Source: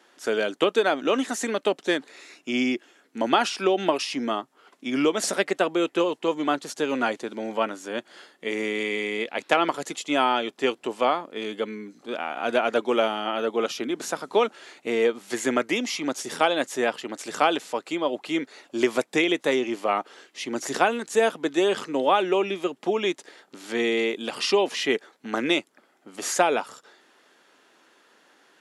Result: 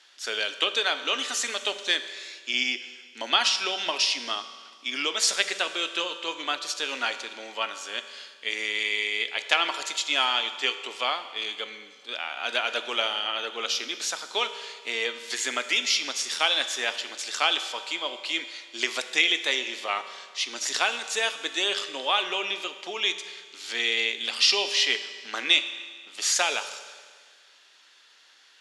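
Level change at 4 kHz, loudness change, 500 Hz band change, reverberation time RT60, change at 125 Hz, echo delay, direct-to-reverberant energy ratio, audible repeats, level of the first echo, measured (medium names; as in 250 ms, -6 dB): +8.0 dB, -0.5 dB, -11.5 dB, 1.7 s, under -20 dB, no echo, 9.0 dB, no echo, no echo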